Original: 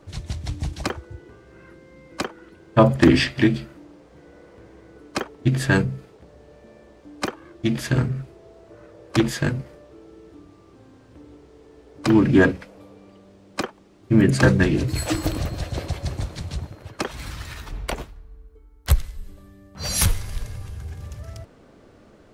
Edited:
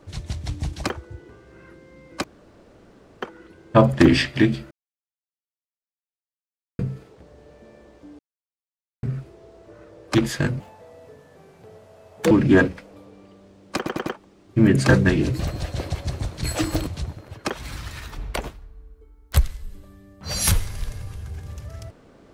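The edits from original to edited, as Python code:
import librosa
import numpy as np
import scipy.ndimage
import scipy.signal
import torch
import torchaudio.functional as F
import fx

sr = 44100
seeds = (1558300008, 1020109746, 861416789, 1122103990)

y = fx.edit(x, sr, fx.insert_room_tone(at_s=2.24, length_s=0.98),
    fx.silence(start_s=3.73, length_s=2.08),
    fx.silence(start_s=7.21, length_s=0.84),
    fx.speed_span(start_s=9.62, length_s=2.53, speed=1.48),
    fx.stutter(start_s=13.6, slice_s=0.1, count=4),
    fx.move(start_s=14.94, length_s=0.44, to_s=16.41), tone=tone)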